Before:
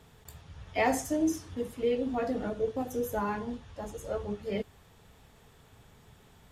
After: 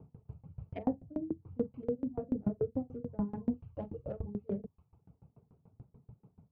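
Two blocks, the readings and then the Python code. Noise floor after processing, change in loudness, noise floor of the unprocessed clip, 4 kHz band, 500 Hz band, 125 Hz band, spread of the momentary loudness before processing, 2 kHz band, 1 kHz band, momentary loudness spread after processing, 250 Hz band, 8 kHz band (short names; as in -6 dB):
-77 dBFS, -5.5 dB, -59 dBFS, under -25 dB, -7.5 dB, +1.0 dB, 15 LU, under -25 dB, -15.0 dB, 14 LU, -2.5 dB, under -35 dB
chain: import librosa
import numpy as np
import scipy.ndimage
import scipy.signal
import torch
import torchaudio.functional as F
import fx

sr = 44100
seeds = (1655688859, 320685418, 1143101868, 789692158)

y = fx.wiener(x, sr, points=25)
y = fx.env_lowpass_down(y, sr, base_hz=500.0, full_db=-28.0)
y = fx.dereverb_blind(y, sr, rt60_s=0.71)
y = fx.peak_eq(y, sr, hz=140.0, db=13.0, octaves=2.1)
y = fx.env_lowpass(y, sr, base_hz=1500.0, full_db=-23.5)
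y = fx.rider(y, sr, range_db=4, speed_s=0.5)
y = scipy.signal.sosfilt(scipy.signal.butter(4, 60.0, 'highpass', fs=sr, output='sos'), y)
y = fx.doubler(y, sr, ms=44.0, db=-10.5)
y = fx.tremolo_decay(y, sr, direction='decaying', hz=6.9, depth_db=28)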